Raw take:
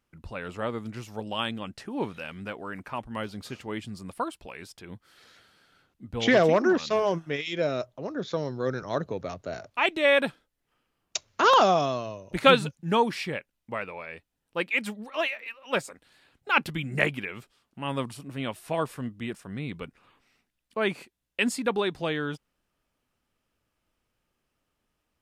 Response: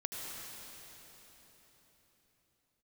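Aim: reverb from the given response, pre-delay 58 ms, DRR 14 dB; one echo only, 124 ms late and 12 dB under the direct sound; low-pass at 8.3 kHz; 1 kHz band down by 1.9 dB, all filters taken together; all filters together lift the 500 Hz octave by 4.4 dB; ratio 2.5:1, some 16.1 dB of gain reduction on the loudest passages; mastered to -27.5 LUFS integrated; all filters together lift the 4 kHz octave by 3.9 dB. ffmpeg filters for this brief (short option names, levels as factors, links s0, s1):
-filter_complex "[0:a]lowpass=8300,equalizer=f=500:t=o:g=6.5,equalizer=f=1000:t=o:g=-5,equalizer=f=4000:t=o:g=5.5,acompressor=threshold=0.0178:ratio=2.5,aecho=1:1:124:0.251,asplit=2[s0][s1];[1:a]atrim=start_sample=2205,adelay=58[s2];[s1][s2]afir=irnorm=-1:irlink=0,volume=0.158[s3];[s0][s3]amix=inputs=2:normalize=0,volume=2.66"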